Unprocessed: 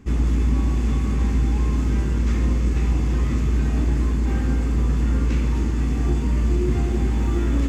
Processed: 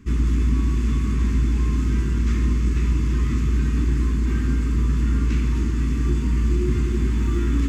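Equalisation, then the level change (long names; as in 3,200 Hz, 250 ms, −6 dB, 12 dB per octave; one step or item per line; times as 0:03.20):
Butterworth band-reject 660 Hz, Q 0.93
parametric band 960 Hz +2.5 dB 0.77 octaves
0.0 dB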